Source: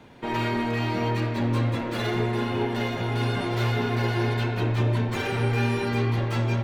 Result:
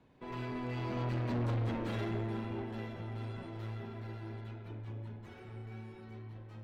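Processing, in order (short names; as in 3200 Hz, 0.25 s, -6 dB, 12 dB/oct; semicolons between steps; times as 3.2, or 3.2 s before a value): Doppler pass-by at 1.5, 20 m/s, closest 7.6 m; tilt -1.5 dB/oct; tube stage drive 26 dB, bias 0.35; gain -4.5 dB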